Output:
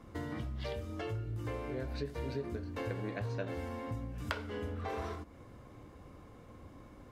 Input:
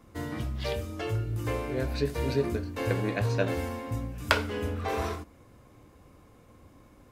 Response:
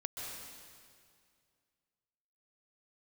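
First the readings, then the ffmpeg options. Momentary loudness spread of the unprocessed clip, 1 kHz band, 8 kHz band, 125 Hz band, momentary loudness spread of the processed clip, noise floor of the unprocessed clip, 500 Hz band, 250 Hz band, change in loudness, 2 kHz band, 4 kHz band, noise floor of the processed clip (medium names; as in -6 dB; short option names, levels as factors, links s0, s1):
7 LU, -9.0 dB, -14.0 dB, -8.0 dB, 16 LU, -57 dBFS, -9.0 dB, -8.0 dB, -9.0 dB, -11.0 dB, -12.0 dB, -55 dBFS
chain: -af "lowpass=f=4000:p=1,acompressor=threshold=0.00891:ratio=3,bandreject=f=2500:w=18,volume=1.26"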